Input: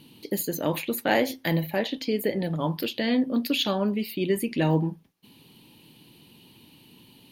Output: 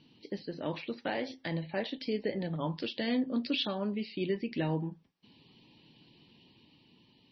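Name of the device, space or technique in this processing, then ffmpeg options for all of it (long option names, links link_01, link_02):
low-bitrate web radio: -af "dynaudnorm=framelen=240:gausssize=9:maxgain=3dB,alimiter=limit=-12dB:level=0:latency=1:release=373,volume=-9dB" -ar 24000 -c:a libmp3lame -b:a 24k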